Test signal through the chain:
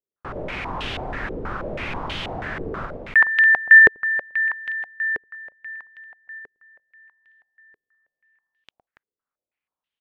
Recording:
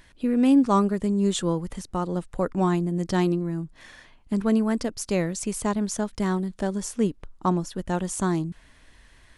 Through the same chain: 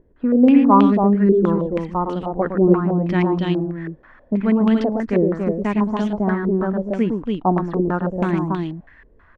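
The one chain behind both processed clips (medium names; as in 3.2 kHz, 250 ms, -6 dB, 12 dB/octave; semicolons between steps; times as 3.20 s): dynamic bell 250 Hz, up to +6 dB, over -35 dBFS, Q 1; loudspeakers at several distances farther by 38 m -6 dB, 97 m -4 dB; step-sequenced low-pass 6.2 Hz 430–3100 Hz; trim -1 dB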